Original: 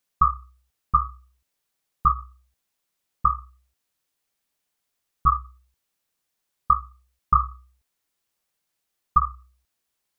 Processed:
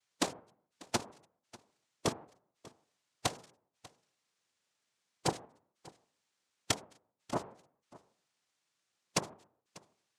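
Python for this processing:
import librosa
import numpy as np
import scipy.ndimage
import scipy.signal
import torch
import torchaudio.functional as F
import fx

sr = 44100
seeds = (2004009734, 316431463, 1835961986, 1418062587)

p1 = fx.self_delay(x, sr, depth_ms=0.86)
p2 = fx.env_lowpass_down(p1, sr, base_hz=440.0, full_db=-21.0)
p3 = fx.level_steps(p2, sr, step_db=14)
p4 = p2 + F.gain(torch.from_numpy(p3), 0.5).numpy()
p5 = fx.spec_gate(p4, sr, threshold_db=-20, keep='strong')
p6 = fx.noise_vocoder(p5, sr, seeds[0], bands=2)
p7 = p6 + fx.echo_single(p6, sr, ms=593, db=-21.5, dry=0)
y = F.gain(torch.from_numpy(p7), -5.5).numpy()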